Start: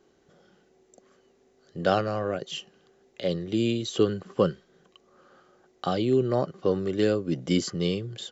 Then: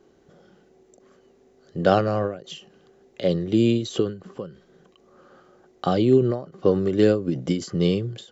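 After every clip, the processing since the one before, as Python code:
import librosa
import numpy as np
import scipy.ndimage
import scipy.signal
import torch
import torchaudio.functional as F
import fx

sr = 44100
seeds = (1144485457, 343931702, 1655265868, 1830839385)

y = fx.tilt_shelf(x, sr, db=3.0, hz=970.0)
y = fx.end_taper(y, sr, db_per_s=130.0)
y = F.gain(torch.from_numpy(y), 4.0).numpy()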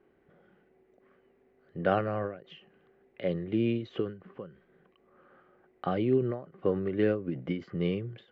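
y = fx.ladder_lowpass(x, sr, hz=2600.0, resonance_pct=45)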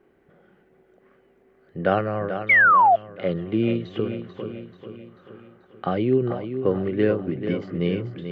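y = fx.echo_feedback(x, sr, ms=438, feedback_pct=51, wet_db=-9)
y = fx.spec_paint(y, sr, seeds[0], shape='fall', start_s=2.49, length_s=0.47, low_hz=650.0, high_hz=2300.0, level_db=-20.0)
y = F.gain(torch.from_numpy(y), 5.5).numpy()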